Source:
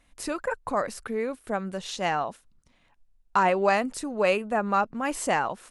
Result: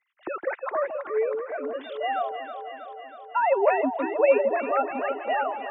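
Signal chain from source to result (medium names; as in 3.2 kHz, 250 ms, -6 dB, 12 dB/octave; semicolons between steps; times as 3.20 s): formants replaced by sine waves; echo whose repeats swap between lows and highs 160 ms, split 870 Hz, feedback 82%, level -6 dB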